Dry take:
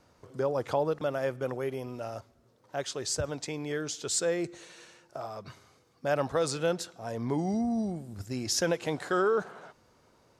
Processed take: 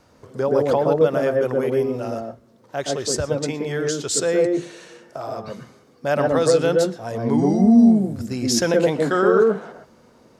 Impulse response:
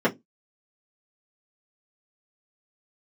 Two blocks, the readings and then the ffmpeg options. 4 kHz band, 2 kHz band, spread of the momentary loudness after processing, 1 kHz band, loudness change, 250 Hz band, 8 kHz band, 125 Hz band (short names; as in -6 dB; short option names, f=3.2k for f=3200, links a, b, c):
+7.0 dB, +8.5 dB, 16 LU, +8.5 dB, +12.0 dB, +15.0 dB, +7.0 dB, +10.5 dB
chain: -filter_complex "[0:a]asplit=2[a][b];[1:a]atrim=start_sample=2205,lowshelf=f=490:g=4.5,adelay=117[c];[b][c]afir=irnorm=-1:irlink=0,volume=-20.5dB[d];[a][d]amix=inputs=2:normalize=0,volume=7dB"